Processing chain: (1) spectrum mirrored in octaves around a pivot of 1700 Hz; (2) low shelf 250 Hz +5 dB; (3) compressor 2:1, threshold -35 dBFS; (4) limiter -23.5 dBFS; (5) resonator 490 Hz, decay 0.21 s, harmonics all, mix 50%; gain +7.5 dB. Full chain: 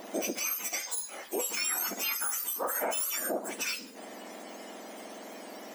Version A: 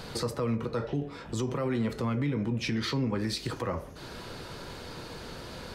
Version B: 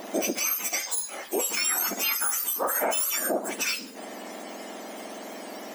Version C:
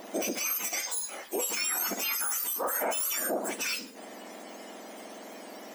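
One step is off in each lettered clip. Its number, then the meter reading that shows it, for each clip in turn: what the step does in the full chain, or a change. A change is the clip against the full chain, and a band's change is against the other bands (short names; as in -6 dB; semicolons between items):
1, 8 kHz band -13.5 dB; 5, loudness change +5.5 LU; 3, mean gain reduction 3.5 dB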